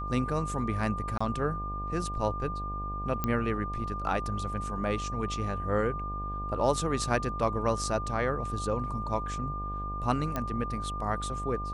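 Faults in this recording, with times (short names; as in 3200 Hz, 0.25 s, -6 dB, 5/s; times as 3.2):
buzz 50 Hz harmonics 17 -37 dBFS
tone 1200 Hz -35 dBFS
1.18–1.21 gap 25 ms
3.24 pop -15 dBFS
10.36 pop -17 dBFS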